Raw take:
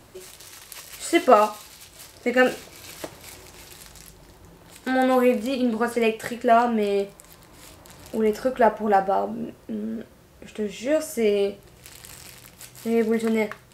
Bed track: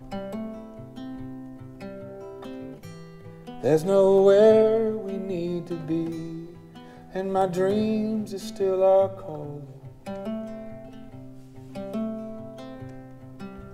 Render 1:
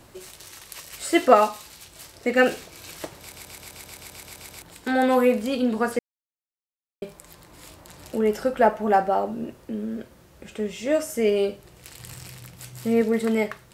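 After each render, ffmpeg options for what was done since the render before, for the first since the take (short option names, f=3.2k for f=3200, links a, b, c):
-filter_complex "[0:a]asettb=1/sr,asplit=3[a][b][c];[a]atrim=end=11.994[d];[b]atrim=start=11.99:end=13.02,asetpts=PTS-STARTPTS,afade=t=in:d=0.004:c=qsin,afade=t=out:st=1.026:d=0.004:c=qsin,equalizer=f=120:w=1.5:g=11[e];[c]atrim=start=13.016[f];[d][e]acrossfade=d=0.004:c1=hsin:c2=qsin[g];[g][f]acrossfade=d=0.004:c1=qsin:c2=hsin,asplit=14[h][i][j][k][l][m][n][o][p][q][r][s][t][u];[h]atrim=end=3.322[v];[i]atrim=start=3.188:end=3.322[w];[j]atrim=start=3.188:end=3.322[x];[k]atrim=start=3.188:end=3.322[y];[l]atrim=start=3.188:end=3.322[z];[m]atrim=start=3.188:end=3.322[aa];[n]atrim=start=3.188:end=3.322[ab];[o]atrim=start=3.188:end=3.322[ac];[p]atrim=start=3.188:end=3.322[ad];[q]atrim=start=3.188:end=3.322[ae];[r]atrim=start=3.188:end=3.322[af];[s]atrim=start=4.618:end=5.99,asetpts=PTS-STARTPTS,afade=t=out:st=1.368:d=0.004:c=hsin[ag];[t]atrim=start=5.99:end=7.02,asetpts=PTS-STARTPTS,volume=0[ah];[u]atrim=start=7.02,asetpts=PTS-STARTPTS,afade=t=in:d=0.004:c=hsin[ai];[v][w]acrossfade=d=0.004:c1=hsin:c2=hsin[aj];[aj][x]acrossfade=d=0.004:c1=hsin:c2=hsin[ak];[ak][y]acrossfade=d=0.004:c1=hsin:c2=hsin[al];[al][z]acrossfade=d=0.004:c1=hsin:c2=hsin[am];[am][aa]acrossfade=d=0.004:c1=hsin:c2=hsin[an];[an][ab]acrossfade=d=0.004:c1=hsin:c2=hsin[ao];[ao][ac]acrossfade=d=0.004:c1=hsin:c2=hsin[ap];[ap][ad]acrossfade=d=0.004:c1=hsin:c2=hsin[aq];[aq][ae]acrossfade=d=0.004:c1=hsin:c2=hsin[ar];[ar][af]acrossfade=d=0.004:c1=hsin:c2=hsin[as];[ag][ah][ai]concat=n=3:v=0:a=1[at];[as][at]acrossfade=d=0.004:c1=hsin:c2=hsin"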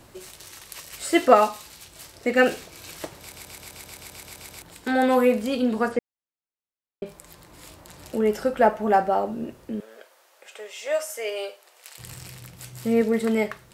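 -filter_complex "[0:a]asettb=1/sr,asplit=3[a][b][c];[a]atrim=end=5.884[d];[b]atrim=start=5.88:end=7.06,asetpts=PTS-STARTPTS,afade=t=in:d=0.004:c=qsin,afade=t=out:st=1.176:d=0.004:c=qsin,aemphasis=mode=reproduction:type=75fm[e];[c]atrim=start=7.056[f];[d][e]acrossfade=d=0.004:c1=hsin:c2=qsin[g];[g][f]acrossfade=d=0.004:c1=qsin:c2=hsin,asettb=1/sr,asplit=3[h][i][j];[h]atrim=end=9.804[k];[i]atrim=start=9.8:end=11.98,asetpts=PTS-STARTPTS,afade=t=in:d=0.004:c=qsin,afade=t=out:st=2.176:d=0.004:c=qsin,highpass=f=570:w=0.5412,highpass=f=570:w=1.3066[l];[j]atrim=start=11.976[m];[k][l]acrossfade=d=0.004:c1=hsin:c2=qsin[n];[n][m]acrossfade=d=0.004:c1=qsin:c2=hsin"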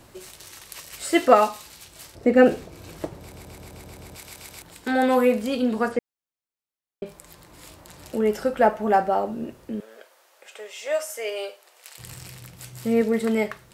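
-filter_complex "[0:a]asettb=1/sr,asplit=3[a][b][c];[a]atrim=end=2.154[d];[b]atrim=start=2.15:end=4.16,asetpts=PTS-STARTPTS,afade=t=in:d=0.004:c=qsin,afade=t=out:st=2.006:d=0.004:c=qsin,tiltshelf=f=970:g=8[e];[c]atrim=start=4.156[f];[d][e]acrossfade=d=0.004:c1=hsin:c2=qsin[g];[g][f]acrossfade=d=0.004:c1=qsin:c2=hsin"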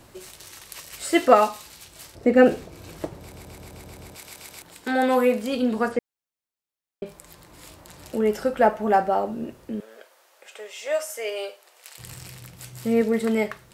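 -filter_complex "[0:a]asettb=1/sr,asplit=3[a][b][c];[a]atrim=end=4.124[d];[b]atrim=start=4.12:end=5.53,asetpts=PTS-STARTPTS,afade=t=in:d=0.004:c=qsin,afade=t=out:st=1.406:d=0.004:c=qsin,lowshelf=f=120:g=-9[e];[c]atrim=start=5.526[f];[d][e]acrossfade=d=0.004:c1=hsin:c2=qsin[g];[g][f]acrossfade=d=0.004:c1=qsin:c2=hsin"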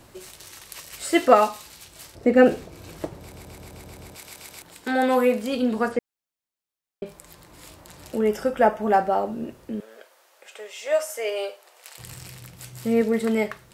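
-filter_complex "[0:a]asettb=1/sr,asplit=3[a][b][c];[a]atrim=end=8.284[d];[b]atrim=start=8.28:end=8.81,asetpts=PTS-STARTPTS,afade=t=in:d=0.004:c=qsin,afade=t=out:st=0.526:d=0.004:c=qsin,asuperstop=centerf=4200:order=20:qfactor=7.3[e];[c]atrim=start=8.806[f];[d][e]acrossfade=d=0.004:c1=hsin:c2=qsin[g];[g][f]acrossfade=d=0.004:c1=qsin:c2=hsin,asettb=1/sr,asplit=3[h][i][j];[h]atrim=end=10.924[k];[i]atrim=start=10.92:end=12.03,asetpts=PTS-STARTPTS,afade=t=in:d=0.004:c=qsin,afade=t=out:st=1.106:d=0.004:c=qsin,equalizer=f=710:w=0.65:g=3.5[l];[j]atrim=start=12.026[m];[k][l]acrossfade=d=0.004:c1=hsin:c2=qsin[n];[n][m]acrossfade=d=0.004:c1=qsin:c2=hsin"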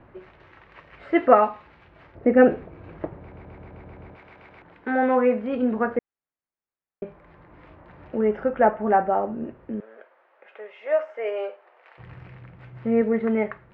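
-af "lowpass=f=2.1k:w=0.5412,lowpass=f=2.1k:w=1.3066"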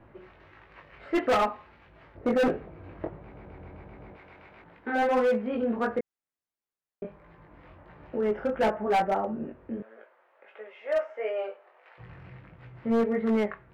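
-af "flanger=delay=18:depth=4:speed=1.5,asoftclip=type=hard:threshold=-20dB"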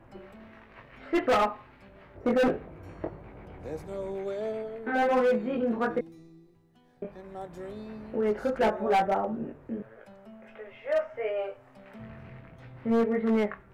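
-filter_complex "[1:a]volume=-17.5dB[a];[0:a][a]amix=inputs=2:normalize=0"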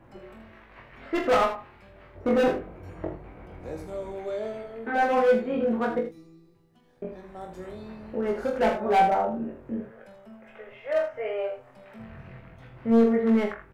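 -filter_complex "[0:a]asplit=2[a][b];[b]adelay=22,volume=-7dB[c];[a][c]amix=inputs=2:normalize=0,aecho=1:1:44|79:0.376|0.316"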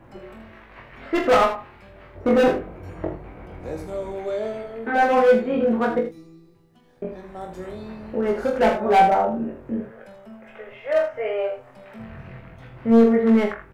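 -af "volume=5dB"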